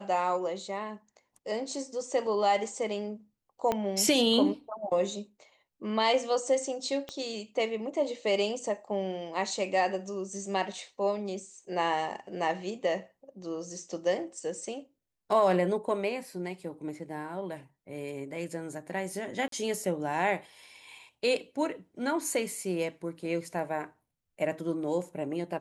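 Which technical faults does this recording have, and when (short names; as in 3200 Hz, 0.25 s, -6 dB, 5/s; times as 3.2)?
3.72 pop -15 dBFS
7.09 pop -23 dBFS
19.48–19.52 gap 43 ms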